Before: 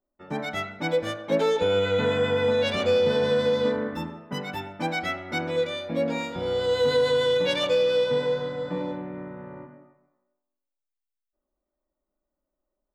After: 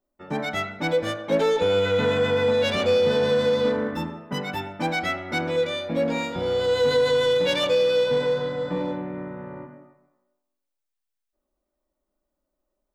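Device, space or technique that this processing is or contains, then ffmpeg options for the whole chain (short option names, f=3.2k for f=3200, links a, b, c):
parallel distortion: -filter_complex "[0:a]asplit=2[a][b];[b]asoftclip=type=hard:threshold=-27dB,volume=-6.5dB[c];[a][c]amix=inputs=2:normalize=0"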